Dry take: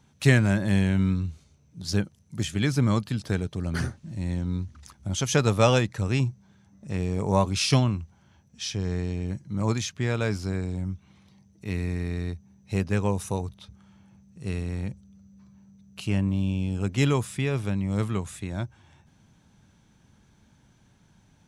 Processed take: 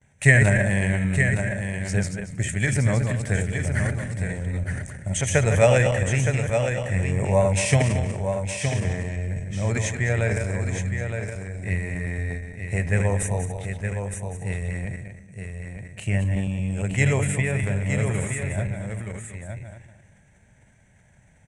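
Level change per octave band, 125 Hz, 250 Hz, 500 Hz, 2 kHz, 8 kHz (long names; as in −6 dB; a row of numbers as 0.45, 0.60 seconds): +4.0, −1.0, +5.0, +9.0, +6.0 decibels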